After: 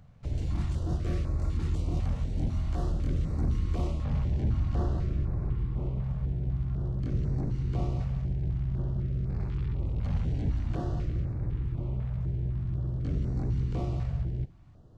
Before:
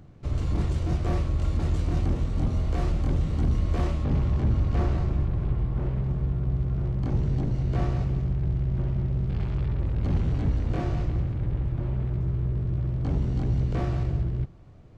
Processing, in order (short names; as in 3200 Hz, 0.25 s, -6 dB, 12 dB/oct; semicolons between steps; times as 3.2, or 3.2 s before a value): stepped notch 4 Hz 340–3100 Hz; gain -4 dB